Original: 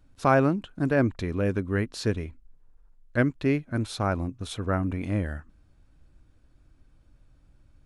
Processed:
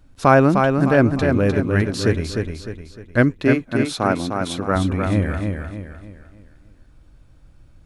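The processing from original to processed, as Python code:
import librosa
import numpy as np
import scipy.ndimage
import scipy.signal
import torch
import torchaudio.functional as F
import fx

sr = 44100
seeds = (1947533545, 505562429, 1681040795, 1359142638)

p1 = fx.highpass(x, sr, hz=170.0, slope=12, at=(3.37, 4.76))
p2 = p1 + fx.echo_feedback(p1, sr, ms=304, feedback_pct=40, wet_db=-5, dry=0)
y = F.gain(torch.from_numpy(p2), 7.5).numpy()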